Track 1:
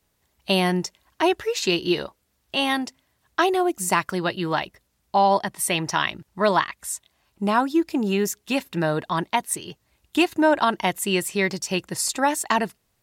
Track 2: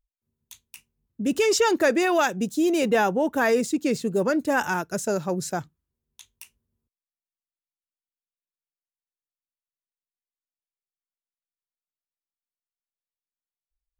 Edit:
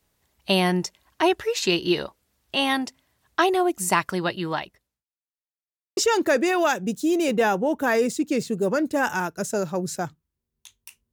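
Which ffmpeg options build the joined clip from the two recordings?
ffmpeg -i cue0.wav -i cue1.wav -filter_complex "[0:a]apad=whole_dur=11.12,atrim=end=11.12,asplit=2[link_01][link_02];[link_01]atrim=end=5.05,asetpts=PTS-STARTPTS,afade=type=out:start_time=3.97:duration=1.08:curve=qsin[link_03];[link_02]atrim=start=5.05:end=5.97,asetpts=PTS-STARTPTS,volume=0[link_04];[1:a]atrim=start=1.51:end=6.66,asetpts=PTS-STARTPTS,afade=type=in:duration=0.004:curve=hsin[link_05];[link_03][link_04][link_05]concat=n=3:v=0:a=1" out.wav

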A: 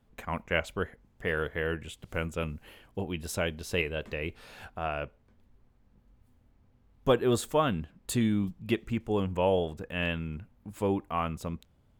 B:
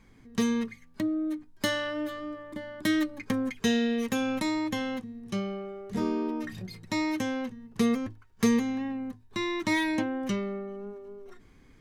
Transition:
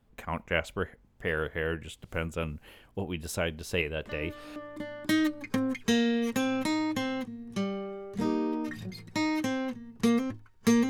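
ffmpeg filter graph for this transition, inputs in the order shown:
ffmpeg -i cue0.wav -i cue1.wav -filter_complex "[1:a]asplit=2[link_01][link_02];[0:a]apad=whole_dur=10.89,atrim=end=10.89,atrim=end=4.562[link_03];[link_02]atrim=start=2.318:end=8.65[link_04];[link_01]atrim=start=1.85:end=2.32,asetpts=PTS-STARTPTS,volume=-9dB,afade=type=in:duration=0.004:curve=hsin,afade=type=out:start_time=0.466:duration=0.004:curve=hsin,adelay=180369S[link_05];[link_03][link_04]acrossfade=duration=0.004:curve1=hsin:curve2=hsin[link_06];[link_06][link_05]amix=inputs=2:normalize=0" out.wav

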